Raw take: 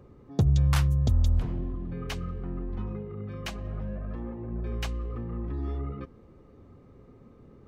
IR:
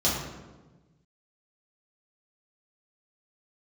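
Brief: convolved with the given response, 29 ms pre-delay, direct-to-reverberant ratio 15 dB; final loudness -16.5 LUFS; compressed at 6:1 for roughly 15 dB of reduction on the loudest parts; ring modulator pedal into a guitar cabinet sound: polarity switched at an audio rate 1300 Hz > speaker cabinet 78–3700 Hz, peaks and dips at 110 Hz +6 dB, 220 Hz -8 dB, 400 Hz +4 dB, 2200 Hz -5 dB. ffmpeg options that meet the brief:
-filter_complex "[0:a]acompressor=threshold=-35dB:ratio=6,asplit=2[a][b];[1:a]atrim=start_sample=2205,adelay=29[c];[b][c]afir=irnorm=-1:irlink=0,volume=-27.5dB[d];[a][d]amix=inputs=2:normalize=0,aeval=exprs='val(0)*sgn(sin(2*PI*1300*n/s))':c=same,highpass=78,equalizer=f=110:t=q:w=4:g=6,equalizer=f=220:t=q:w=4:g=-8,equalizer=f=400:t=q:w=4:g=4,equalizer=f=2.2k:t=q:w=4:g=-5,lowpass=f=3.7k:w=0.5412,lowpass=f=3.7k:w=1.3066,volume=21.5dB"

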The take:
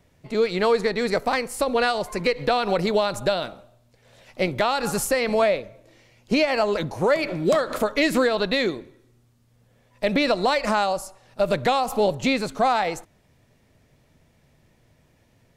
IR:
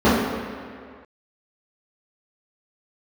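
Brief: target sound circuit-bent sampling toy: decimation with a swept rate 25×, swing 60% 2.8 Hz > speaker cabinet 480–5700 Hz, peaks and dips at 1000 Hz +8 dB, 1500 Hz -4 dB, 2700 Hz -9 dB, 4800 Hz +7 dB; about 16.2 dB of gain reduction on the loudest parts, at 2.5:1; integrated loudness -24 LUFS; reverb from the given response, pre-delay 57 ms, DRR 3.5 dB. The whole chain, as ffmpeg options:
-filter_complex "[0:a]acompressor=threshold=-42dB:ratio=2.5,asplit=2[a][b];[1:a]atrim=start_sample=2205,adelay=57[c];[b][c]afir=irnorm=-1:irlink=0,volume=-29dB[d];[a][d]amix=inputs=2:normalize=0,acrusher=samples=25:mix=1:aa=0.000001:lfo=1:lforange=15:lforate=2.8,highpass=480,equalizer=f=1k:t=q:w=4:g=8,equalizer=f=1.5k:t=q:w=4:g=-4,equalizer=f=2.7k:t=q:w=4:g=-9,equalizer=f=4.8k:t=q:w=4:g=7,lowpass=f=5.7k:w=0.5412,lowpass=f=5.7k:w=1.3066,volume=12dB"

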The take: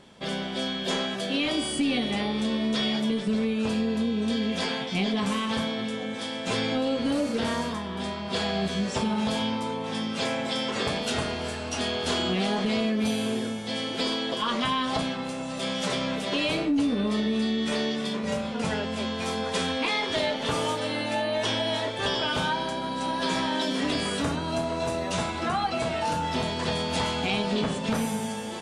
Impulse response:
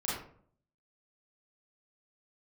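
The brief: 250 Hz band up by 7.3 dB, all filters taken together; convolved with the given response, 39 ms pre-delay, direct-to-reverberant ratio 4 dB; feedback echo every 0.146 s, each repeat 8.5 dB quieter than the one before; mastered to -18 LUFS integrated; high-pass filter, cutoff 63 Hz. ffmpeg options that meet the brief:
-filter_complex "[0:a]highpass=63,equalizer=f=250:t=o:g=8.5,aecho=1:1:146|292|438|584:0.376|0.143|0.0543|0.0206,asplit=2[a][b];[1:a]atrim=start_sample=2205,adelay=39[c];[b][c]afir=irnorm=-1:irlink=0,volume=-9.5dB[d];[a][d]amix=inputs=2:normalize=0,volume=3dB"

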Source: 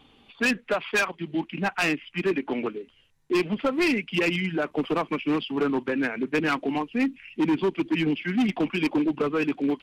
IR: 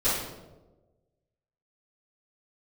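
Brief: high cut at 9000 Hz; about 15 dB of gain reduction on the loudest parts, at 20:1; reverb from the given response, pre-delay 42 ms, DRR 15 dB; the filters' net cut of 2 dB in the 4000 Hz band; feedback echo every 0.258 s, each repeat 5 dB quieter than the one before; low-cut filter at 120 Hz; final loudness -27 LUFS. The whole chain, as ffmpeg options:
-filter_complex "[0:a]highpass=120,lowpass=9k,equalizer=f=4k:t=o:g=-3,acompressor=threshold=-35dB:ratio=20,aecho=1:1:258|516|774|1032|1290|1548|1806:0.562|0.315|0.176|0.0988|0.0553|0.031|0.0173,asplit=2[a][b];[1:a]atrim=start_sample=2205,adelay=42[c];[b][c]afir=irnorm=-1:irlink=0,volume=-27.5dB[d];[a][d]amix=inputs=2:normalize=0,volume=11dB"

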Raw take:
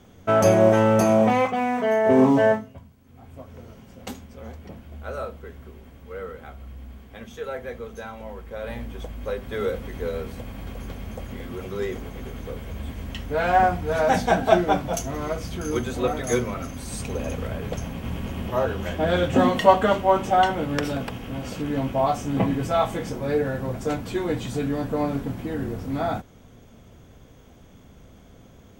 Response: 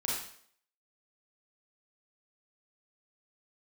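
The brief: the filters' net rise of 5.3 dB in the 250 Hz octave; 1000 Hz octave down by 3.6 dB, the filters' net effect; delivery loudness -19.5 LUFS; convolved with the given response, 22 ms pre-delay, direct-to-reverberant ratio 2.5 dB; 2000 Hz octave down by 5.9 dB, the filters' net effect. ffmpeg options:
-filter_complex "[0:a]equalizer=f=250:t=o:g=6.5,equalizer=f=1k:t=o:g=-5,equalizer=f=2k:t=o:g=-6,asplit=2[a][b];[1:a]atrim=start_sample=2205,adelay=22[c];[b][c]afir=irnorm=-1:irlink=0,volume=-7.5dB[d];[a][d]amix=inputs=2:normalize=0,volume=1dB"

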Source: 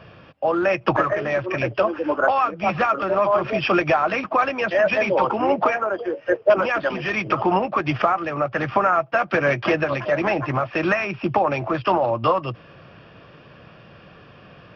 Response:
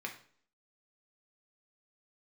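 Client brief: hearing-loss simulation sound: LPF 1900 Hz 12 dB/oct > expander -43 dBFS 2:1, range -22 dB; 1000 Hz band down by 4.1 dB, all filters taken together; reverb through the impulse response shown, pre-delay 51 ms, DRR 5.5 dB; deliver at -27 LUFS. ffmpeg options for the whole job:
-filter_complex "[0:a]equalizer=f=1k:t=o:g=-5,asplit=2[a][b];[1:a]atrim=start_sample=2205,adelay=51[c];[b][c]afir=irnorm=-1:irlink=0,volume=-7dB[d];[a][d]amix=inputs=2:normalize=0,lowpass=1.9k,agate=range=-22dB:threshold=-43dB:ratio=2,volume=-4dB"

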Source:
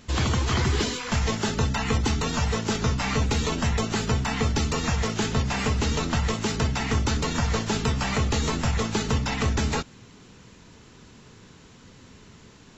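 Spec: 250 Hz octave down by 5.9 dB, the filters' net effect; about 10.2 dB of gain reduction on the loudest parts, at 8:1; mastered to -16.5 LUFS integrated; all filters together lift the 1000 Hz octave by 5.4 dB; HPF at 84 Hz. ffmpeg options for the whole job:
-af "highpass=84,equalizer=f=250:t=o:g=-8,equalizer=f=1k:t=o:g=7,acompressor=threshold=-32dB:ratio=8,volume=19dB"

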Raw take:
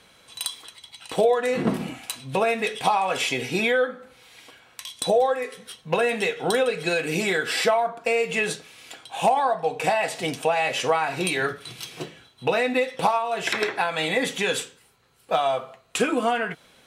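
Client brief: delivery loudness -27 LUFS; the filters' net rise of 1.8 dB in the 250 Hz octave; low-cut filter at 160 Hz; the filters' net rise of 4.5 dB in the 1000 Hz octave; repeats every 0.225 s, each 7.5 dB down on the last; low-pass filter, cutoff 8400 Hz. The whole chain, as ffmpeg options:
-af "highpass=160,lowpass=8.4k,equalizer=f=250:t=o:g=3,equalizer=f=1k:t=o:g=6,aecho=1:1:225|450|675|900|1125:0.422|0.177|0.0744|0.0312|0.0131,volume=-6dB"

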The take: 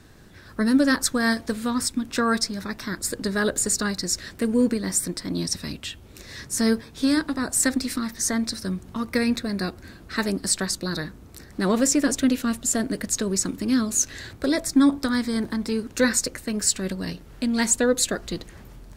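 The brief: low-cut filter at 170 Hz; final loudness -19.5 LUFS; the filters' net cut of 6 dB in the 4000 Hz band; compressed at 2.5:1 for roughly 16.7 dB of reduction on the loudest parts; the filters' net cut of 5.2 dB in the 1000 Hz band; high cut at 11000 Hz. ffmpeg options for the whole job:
-af "highpass=170,lowpass=11k,equalizer=f=1k:t=o:g=-6.5,equalizer=f=4k:t=o:g=-7.5,acompressor=threshold=-41dB:ratio=2.5,volume=19dB"

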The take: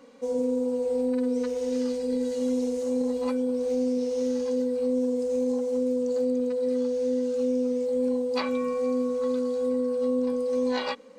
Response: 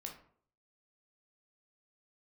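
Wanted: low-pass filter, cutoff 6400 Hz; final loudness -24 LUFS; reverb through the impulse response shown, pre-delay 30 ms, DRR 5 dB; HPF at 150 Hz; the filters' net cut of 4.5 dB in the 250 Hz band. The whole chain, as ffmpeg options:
-filter_complex "[0:a]highpass=150,lowpass=6.4k,equalizer=f=250:t=o:g=-4,asplit=2[a][b];[1:a]atrim=start_sample=2205,adelay=30[c];[b][c]afir=irnorm=-1:irlink=0,volume=-2dB[d];[a][d]amix=inputs=2:normalize=0,volume=2.5dB"

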